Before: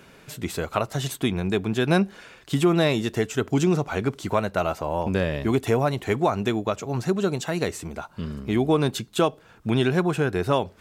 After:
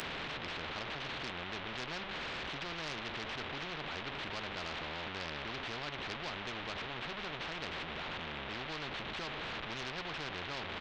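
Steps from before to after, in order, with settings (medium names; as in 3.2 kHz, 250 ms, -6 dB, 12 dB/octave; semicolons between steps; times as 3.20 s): one-bit delta coder 16 kbps, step -21.5 dBFS; doubling 13 ms -12 dB; on a send at -23 dB: reverberation RT60 0.50 s, pre-delay 6 ms; on the sum: valve stage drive 15 dB, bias 0.2; spectrum-flattening compressor 4:1; trim -7.5 dB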